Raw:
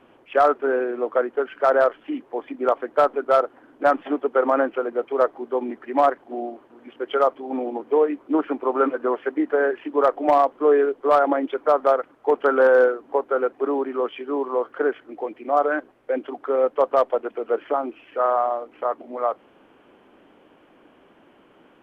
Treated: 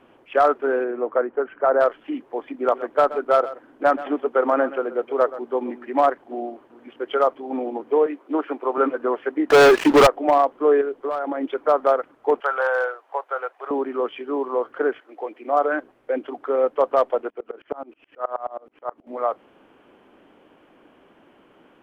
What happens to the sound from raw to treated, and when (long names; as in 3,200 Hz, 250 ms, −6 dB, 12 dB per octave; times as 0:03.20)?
0:00.84–0:01.79: low-pass filter 2,400 Hz → 1,400 Hz
0:02.58–0:06.00: single-tap delay 128 ms −15.5 dB
0:08.06–0:08.78: high-pass filter 320 Hz
0:09.50–0:10.07: leveller curve on the samples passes 5
0:10.81–0:11.41: downward compressor, threshold −22 dBFS
0:12.40–0:13.71: high-pass filter 640 Hz 24 dB per octave
0:14.99–0:15.72: high-pass filter 630 Hz → 160 Hz
0:17.30–0:19.07: tremolo with a ramp in dB swelling 9.4 Hz, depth 29 dB